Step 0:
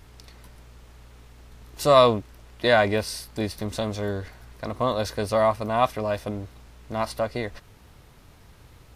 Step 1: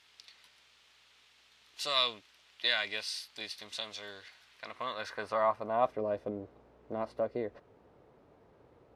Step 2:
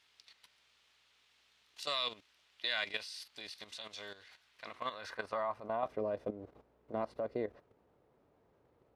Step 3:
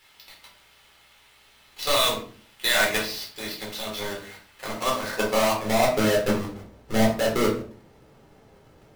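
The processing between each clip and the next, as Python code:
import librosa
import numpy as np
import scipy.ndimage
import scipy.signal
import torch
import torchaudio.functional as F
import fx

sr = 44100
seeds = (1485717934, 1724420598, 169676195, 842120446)

y1 = fx.filter_sweep_bandpass(x, sr, from_hz=3400.0, to_hz=480.0, start_s=4.46, end_s=6.01, q=1.4)
y1 = fx.dynamic_eq(y1, sr, hz=760.0, q=0.98, threshold_db=-40.0, ratio=4.0, max_db=-6)
y2 = fx.level_steps(y1, sr, step_db=12)
y2 = y2 * librosa.db_to_amplitude(1.0)
y3 = fx.halfwave_hold(y2, sr)
y3 = fx.room_shoebox(y3, sr, seeds[0], volume_m3=330.0, walls='furnished', distance_m=4.1)
y3 = y3 * librosa.db_to_amplitude(4.5)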